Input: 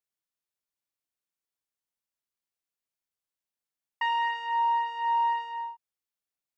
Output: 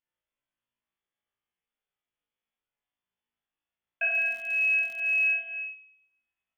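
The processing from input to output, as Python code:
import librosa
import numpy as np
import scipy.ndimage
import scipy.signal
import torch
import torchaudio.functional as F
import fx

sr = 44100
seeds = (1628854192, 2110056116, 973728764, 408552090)

y = fx.room_flutter(x, sr, wall_m=3.1, rt60_s=0.83)
y = fx.freq_invert(y, sr, carrier_hz=3500)
y = fx.dmg_crackle(y, sr, seeds[0], per_s=130.0, level_db=-36.0, at=(4.11, 5.34), fade=0.02)
y = y * librosa.db_to_amplitude(-1.0)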